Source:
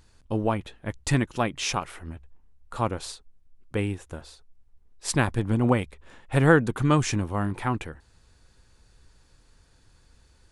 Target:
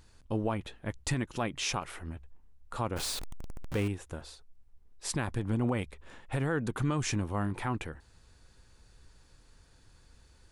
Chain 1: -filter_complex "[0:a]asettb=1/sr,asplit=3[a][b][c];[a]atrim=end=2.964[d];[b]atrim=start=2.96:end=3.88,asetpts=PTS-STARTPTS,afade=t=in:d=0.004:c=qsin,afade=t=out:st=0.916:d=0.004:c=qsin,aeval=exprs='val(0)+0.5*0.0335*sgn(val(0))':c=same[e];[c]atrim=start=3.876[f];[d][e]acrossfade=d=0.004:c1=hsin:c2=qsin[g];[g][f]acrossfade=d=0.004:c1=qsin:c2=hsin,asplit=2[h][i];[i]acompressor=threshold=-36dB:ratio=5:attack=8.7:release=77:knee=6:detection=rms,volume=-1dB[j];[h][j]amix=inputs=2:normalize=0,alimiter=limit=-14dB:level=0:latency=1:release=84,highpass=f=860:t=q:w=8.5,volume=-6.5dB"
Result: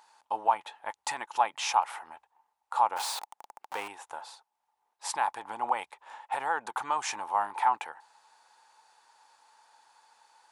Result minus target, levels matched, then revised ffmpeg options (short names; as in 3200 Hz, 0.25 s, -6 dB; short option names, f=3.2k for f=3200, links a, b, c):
1000 Hz band +9.5 dB
-filter_complex "[0:a]asettb=1/sr,asplit=3[a][b][c];[a]atrim=end=2.964[d];[b]atrim=start=2.96:end=3.88,asetpts=PTS-STARTPTS,afade=t=in:d=0.004:c=qsin,afade=t=out:st=0.916:d=0.004:c=qsin,aeval=exprs='val(0)+0.5*0.0335*sgn(val(0))':c=same[e];[c]atrim=start=3.876[f];[d][e]acrossfade=d=0.004:c1=hsin:c2=qsin[g];[g][f]acrossfade=d=0.004:c1=qsin:c2=hsin,asplit=2[h][i];[i]acompressor=threshold=-36dB:ratio=5:attack=8.7:release=77:knee=6:detection=rms,volume=-1dB[j];[h][j]amix=inputs=2:normalize=0,alimiter=limit=-14dB:level=0:latency=1:release=84,volume=-6.5dB"